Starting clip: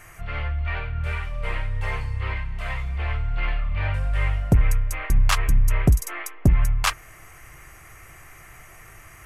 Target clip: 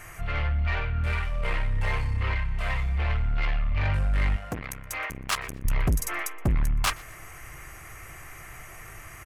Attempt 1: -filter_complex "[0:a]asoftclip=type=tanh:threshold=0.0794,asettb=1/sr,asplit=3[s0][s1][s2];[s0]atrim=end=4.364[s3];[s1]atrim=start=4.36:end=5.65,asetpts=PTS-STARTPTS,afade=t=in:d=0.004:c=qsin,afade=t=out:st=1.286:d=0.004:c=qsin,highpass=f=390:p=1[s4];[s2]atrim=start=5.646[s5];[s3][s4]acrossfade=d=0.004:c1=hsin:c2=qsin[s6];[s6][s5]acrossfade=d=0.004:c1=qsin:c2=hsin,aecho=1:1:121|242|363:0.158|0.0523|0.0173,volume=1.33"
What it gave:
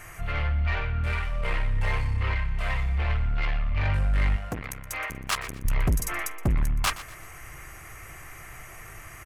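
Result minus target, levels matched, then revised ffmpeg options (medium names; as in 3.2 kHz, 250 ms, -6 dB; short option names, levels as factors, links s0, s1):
echo-to-direct +9 dB
-filter_complex "[0:a]asoftclip=type=tanh:threshold=0.0794,asettb=1/sr,asplit=3[s0][s1][s2];[s0]atrim=end=4.364[s3];[s1]atrim=start=4.36:end=5.65,asetpts=PTS-STARTPTS,afade=t=in:d=0.004:c=qsin,afade=t=out:st=1.286:d=0.004:c=qsin,highpass=f=390:p=1[s4];[s2]atrim=start=5.646[s5];[s3][s4]acrossfade=d=0.004:c1=hsin:c2=qsin[s6];[s6][s5]acrossfade=d=0.004:c1=qsin:c2=hsin,aecho=1:1:121|242:0.0562|0.0186,volume=1.33"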